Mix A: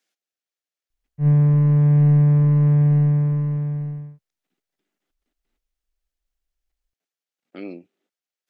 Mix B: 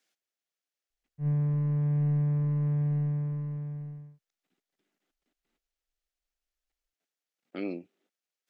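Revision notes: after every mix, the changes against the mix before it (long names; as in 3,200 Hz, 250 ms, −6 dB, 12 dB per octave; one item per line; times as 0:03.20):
background −12.0 dB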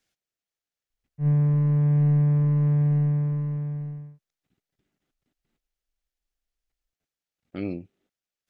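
speech: remove Bessel high-pass filter 300 Hz, order 4
background +6.5 dB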